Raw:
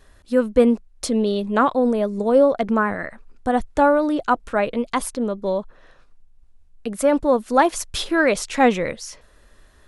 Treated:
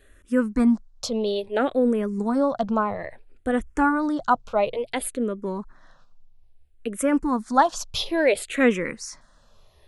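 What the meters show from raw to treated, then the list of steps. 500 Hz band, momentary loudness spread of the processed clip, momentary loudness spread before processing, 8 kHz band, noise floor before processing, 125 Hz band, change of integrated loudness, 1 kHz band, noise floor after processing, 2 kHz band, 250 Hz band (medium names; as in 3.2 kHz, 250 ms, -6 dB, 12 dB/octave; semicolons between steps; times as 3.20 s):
-5.5 dB, 11 LU, 10 LU, -3.0 dB, -53 dBFS, -3.5 dB, -3.5 dB, -3.5 dB, -56 dBFS, -4.0 dB, -2.0 dB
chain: hum notches 60/120 Hz; barber-pole phaser -0.59 Hz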